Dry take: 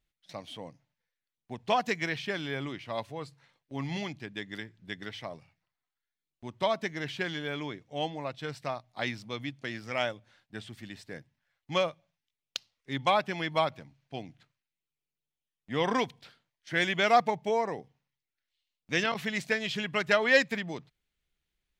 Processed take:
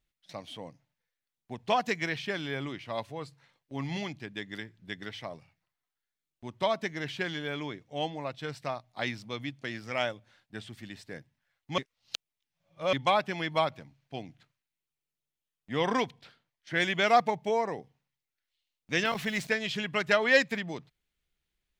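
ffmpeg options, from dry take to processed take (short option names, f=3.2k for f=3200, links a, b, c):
-filter_complex "[0:a]asettb=1/sr,asplit=3[a][b][c];[a]atrim=end=16.024[d];[b]atrim=start=16.02:end=16.8,asetpts=PTS-STARTPTS,afade=t=in:d=0.004:c=qsin,afade=t=out:st=0.776:d=0.004:c=qsin,highshelf=f=6.5k:g=-7[e];[c]atrim=start=16.796[f];[d][e]acrossfade=d=0.004:c1=hsin:c2=qsin[g];[g][f]acrossfade=d=0.004:c1=qsin:c2=hsin,asettb=1/sr,asplit=3[h][i][j];[h]atrim=end=19.054[k];[i]atrim=start=19.05:end=19.47,asetpts=PTS-STARTPTS,afade=t=in:d=0.004:c=qsin,afade=t=out:st=0.416:d=0.004:c=qsin,aeval=exprs='val(0)+0.5*0.00668*sgn(val(0))':c=same[l];[j]atrim=start=19.466[m];[k][l]acrossfade=d=0.004:c1=hsin:c2=qsin[n];[n][m]acrossfade=d=0.004:c1=qsin:c2=hsin,asplit=3[o][p][q];[o]atrim=end=11.782[r];[p]atrim=start=11.778:end=12.932,asetpts=PTS-STARTPTS,areverse[s];[q]atrim=start=12.928[t];[r][s]acrossfade=d=0.004:c1=hsin:c2=hsin[u];[u][t]acrossfade=d=0.004:c1=hsin:c2=hsin"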